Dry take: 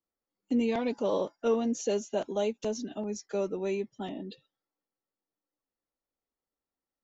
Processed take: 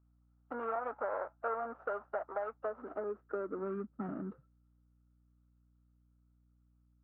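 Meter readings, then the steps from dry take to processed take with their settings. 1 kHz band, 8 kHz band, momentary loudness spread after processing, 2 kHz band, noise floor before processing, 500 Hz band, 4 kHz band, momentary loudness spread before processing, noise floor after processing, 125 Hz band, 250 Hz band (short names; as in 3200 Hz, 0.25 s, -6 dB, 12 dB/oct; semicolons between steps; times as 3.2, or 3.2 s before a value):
0.0 dB, n/a, 4 LU, -1.5 dB, under -85 dBFS, -8.0 dB, under -30 dB, 9 LU, -70 dBFS, -6.5 dB, -13.0 dB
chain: median filter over 41 samples; high-pass sweep 720 Hz -> 130 Hz, 2.52–4.22; compressor, threshold -34 dBFS, peak gain reduction 10.5 dB; hum 60 Hz, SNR 27 dB; ladder low-pass 1400 Hz, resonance 80%; bell 78 Hz +3.5 dB 0.68 oct; gain +10 dB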